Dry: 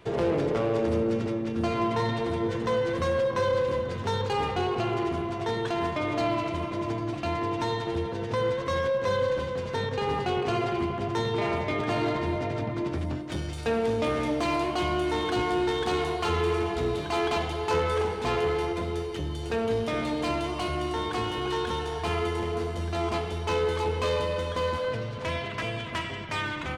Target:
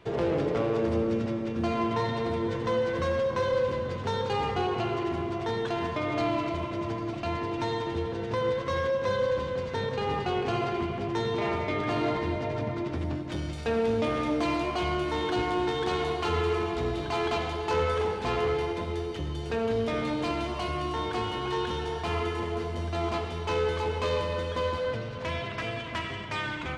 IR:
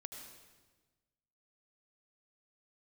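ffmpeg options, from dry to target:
-filter_complex "[0:a]asplit=2[a][b];[1:a]atrim=start_sample=2205,lowpass=7.8k[c];[b][c]afir=irnorm=-1:irlink=0,volume=5.5dB[d];[a][d]amix=inputs=2:normalize=0,volume=-7.5dB"

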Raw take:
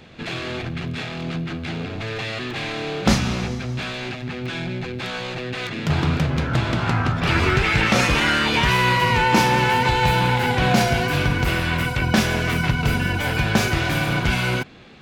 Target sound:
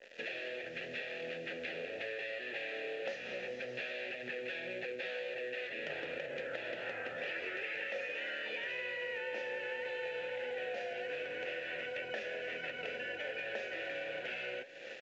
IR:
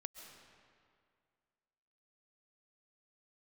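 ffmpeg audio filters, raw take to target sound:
-filter_complex "[0:a]lowshelf=f=290:g=-12,acrossover=split=280[a][b];[a]asoftclip=type=hard:threshold=-32.5dB[c];[c][b]amix=inputs=2:normalize=0,aecho=1:1:740:0.0668,dynaudnorm=f=180:g=17:m=9dB,aresample=16000,acrusher=bits=6:mix=0:aa=0.000001,aresample=44100,asplit=3[d][e][f];[d]bandpass=f=530:t=q:w=8,volume=0dB[g];[e]bandpass=f=1.84k:t=q:w=8,volume=-6dB[h];[f]bandpass=f=2.48k:t=q:w=8,volume=-9dB[i];[g][h][i]amix=inputs=3:normalize=0,adynamicequalizer=threshold=0.00355:dfrequency=4800:dqfactor=1.6:tfrequency=4800:tqfactor=1.6:attack=5:release=100:ratio=0.375:range=2:mode=cutabove:tftype=bell,acompressor=threshold=-49dB:ratio=8,flanger=delay=6.6:depth=5:regen=-77:speed=1.9:shape=triangular,volume=14.5dB" -ar 16000 -c:a pcm_mulaw

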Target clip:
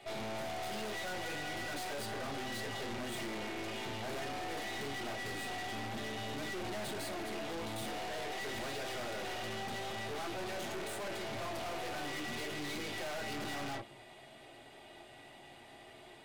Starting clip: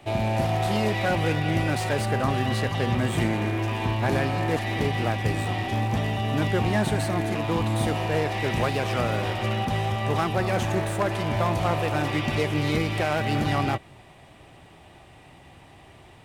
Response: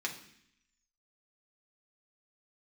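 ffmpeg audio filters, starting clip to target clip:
-filter_complex "[1:a]atrim=start_sample=2205,afade=t=out:st=0.18:d=0.01,atrim=end_sample=8379,asetrate=83790,aresample=44100[a];[0:a][a]afir=irnorm=-1:irlink=0,aeval=exprs='(tanh(112*val(0)+0.45)-tanh(0.45))/112':c=same,volume=2dB"

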